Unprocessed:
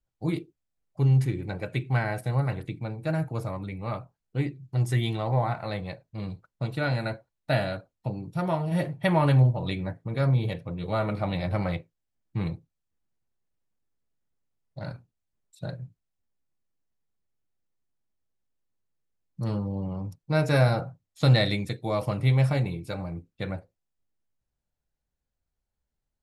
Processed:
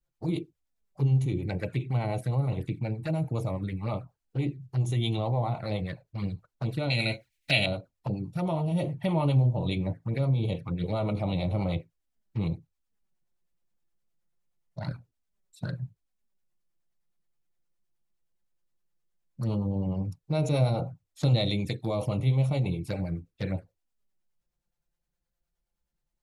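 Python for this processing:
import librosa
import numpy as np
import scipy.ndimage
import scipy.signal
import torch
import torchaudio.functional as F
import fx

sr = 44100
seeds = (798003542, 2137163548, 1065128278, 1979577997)

p1 = fx.harmonic_tremolo(x, sr, hz=9.6, depth_pct=50, crossover_hz=520.0)
p2 = fx.over_compress(p1, sr, threshold_db=-33.0, ratio=-1.0)
p3 = p1 + F.gain(torch.from_numpy(p2), -2.5).numpy()
p4 = fx.high_shelf_res(p3, sr, hz=1600.0, db=11.5, q=3.0, at=(6.9, 7.66))
p5 = fx.env_flanger(p4, sr, rest_ms=5.8, full_db=-23.5)
y = F.gain(torch.from_numpy(p5), -1.5).numpy()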